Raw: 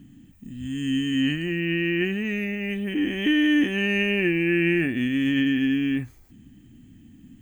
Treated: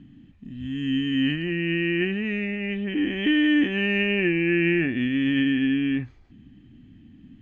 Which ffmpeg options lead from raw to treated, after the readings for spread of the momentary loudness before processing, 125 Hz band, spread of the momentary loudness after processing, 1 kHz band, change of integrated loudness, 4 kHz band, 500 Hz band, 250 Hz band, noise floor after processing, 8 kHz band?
8 LU, 0.0 dB, 8 LU, 0.0 dB, 0.0 dB, 0.0 dB, 0.0 dB, 0.0 dB, -51 dBFS, no reading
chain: -af "lowpass=f=4300:w=0.5412,lowpass=f=4300:w=1.3066"

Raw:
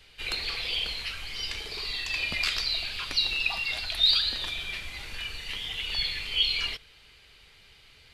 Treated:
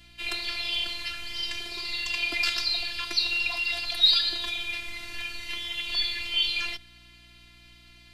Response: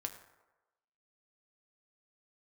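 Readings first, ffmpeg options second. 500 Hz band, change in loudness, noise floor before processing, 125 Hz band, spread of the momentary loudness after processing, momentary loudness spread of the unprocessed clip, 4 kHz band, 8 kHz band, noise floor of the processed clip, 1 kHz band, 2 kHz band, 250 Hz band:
+0.5 dB, +1.0 dB, -56 dBFS, no reading, 12 LU, 11 LU, +1.0 dB, +1.0 dB, -53 dBFS, +1.0 dB, +2.0 dB, +2.5 dB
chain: -af "afreqshift=47,afftfilt=real='hypot(re,im)*cos(PI*b)':imag='0':win_size=512:overlap=0.75,aeval=exprs='val(0)+0.000891*(sin(2*PI*60*n/s)+sin(2*PI*2*60*n/s)/2+sin(2*PI*3*60*n/s)/3+sin(2*PI*4*60*n/s)/4+sin(2*PI*5*60*n/s)/5)':c=same,volume=1.68"

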